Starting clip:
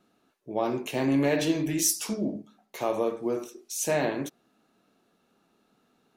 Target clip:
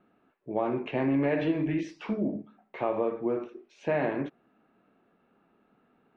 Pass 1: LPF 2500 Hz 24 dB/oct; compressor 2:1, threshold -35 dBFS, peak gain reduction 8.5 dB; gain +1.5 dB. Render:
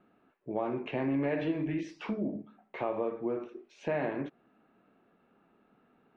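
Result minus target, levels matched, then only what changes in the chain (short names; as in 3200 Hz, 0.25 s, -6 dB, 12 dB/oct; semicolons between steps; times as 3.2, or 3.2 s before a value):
compressor: peak gain reduction +4 dB
change: compressor 2:1, threshold -26.5 dBFS, peak gain reduction 4 dB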